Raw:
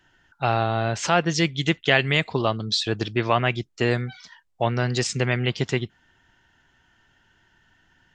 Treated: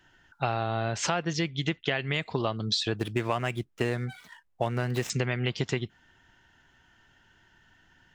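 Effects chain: 2.96–5.1 median filter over 9 samples; compressor 6:1, threshold -24 dBFS, peak gain reduction 11 dB; 1.33–2.14 air absorption 87 m

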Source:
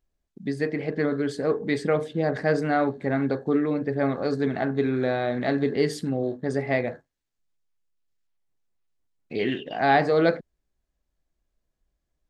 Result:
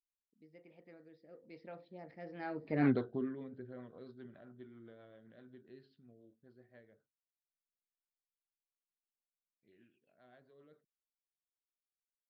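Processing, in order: Doppler pass-by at 2.87, 38 m/s, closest 2.3 m; rotary speaker horn 1 Hz, later 7.5 Hz, at 2.11; downsampling 11025 Hz

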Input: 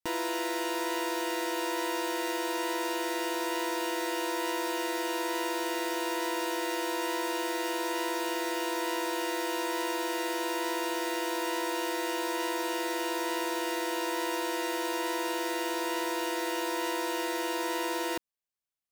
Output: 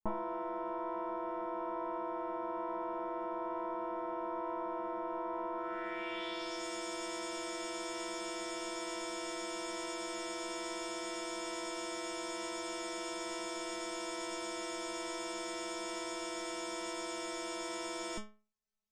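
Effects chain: RIAA curve playback; low-pass sweep 1000 Hz -> 6900 Hz, 5.53–6.65; high shelf 9100 Hz +6 dB; metallic resonator 210 Hz, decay 0.37 s, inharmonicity 0.002; gain +12.5 dB

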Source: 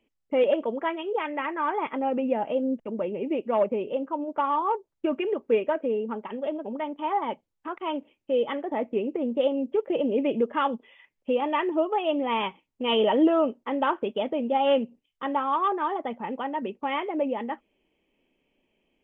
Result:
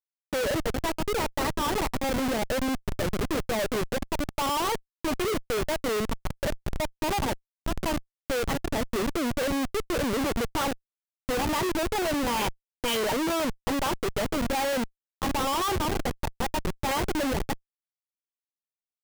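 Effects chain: high shelf 2400 Hz +11.5 dB; Schmitt trigger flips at -26.5 dBFS

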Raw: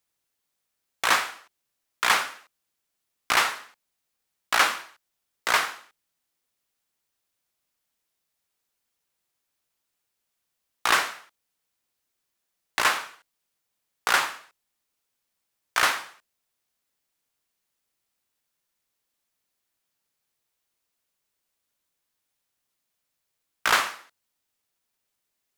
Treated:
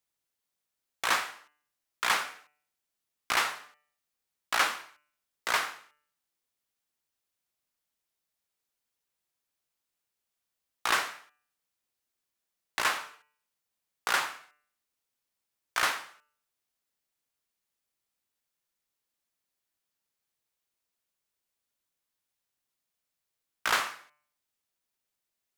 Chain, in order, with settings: de-hum 148.7 Hz, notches 20; gain -5.5 dB

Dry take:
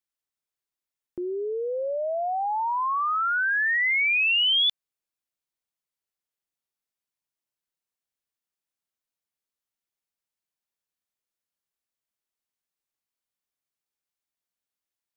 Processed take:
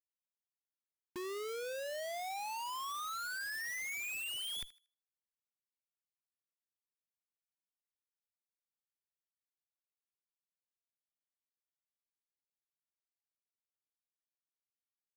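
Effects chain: Doppler pass-by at 4.63, 6 m/s, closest 4.2 m; LPF 4500 Hz 24 dB/oct; reverse; compressor 8:1, threshold -33 dBFS, peak gain reduction 12 dB; reverse; added harmonics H 5 -44 dB, 6 -24 dB, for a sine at -18.5 dBFS; low-pass sweep 110 Hz -> 2000 Hz, 0.41–3.1; Schmitt trigger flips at -47 dBFS; on a send: thinning echo 78 ms, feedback 27%, high-pass 830 Hz, level -16.5 dB; on the sum: gain -3.5 dB

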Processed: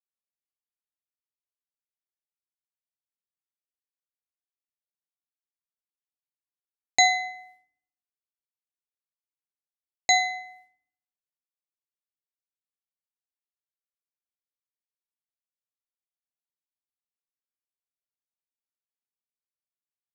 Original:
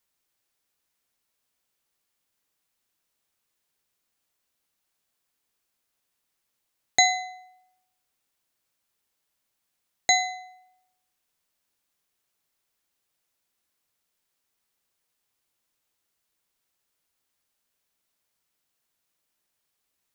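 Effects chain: expander -53 dBFS; low-pass opened by the level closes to 2400 Hz, open at -39.5 dBFS; FDN reverb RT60 0.79 s, low-frequency decay 1.25×, high-frequency decay 0.35×, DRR 11 dB; gain -1 dB

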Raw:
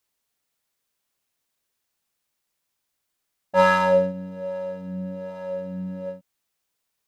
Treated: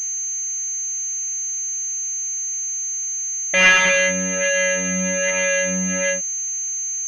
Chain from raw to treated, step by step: overdrive pedal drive 37 dB, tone 2500 Hz, clips at -4.5 dBFS; resonant high shelf 1500 Hz +13 dB, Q 3; pulse-width modulation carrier 6300 Hz; gain -9.5 dB

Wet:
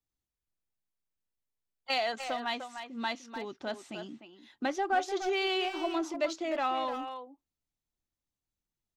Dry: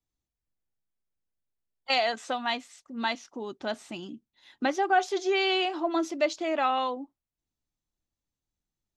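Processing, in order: speakerphone echo 0.3 s, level -8 dB; in parallel at -11 dB: hard clip -29 dBFS, distortion -6 dB; on the sum: gain -6 dB

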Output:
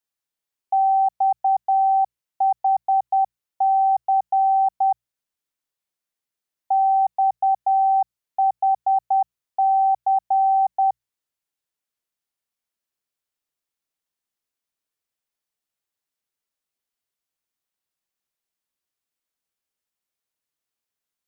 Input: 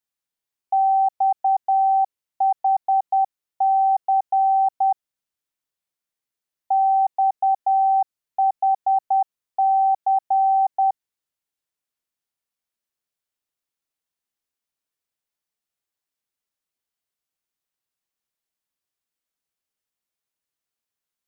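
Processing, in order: notches 60/120/180 Hz

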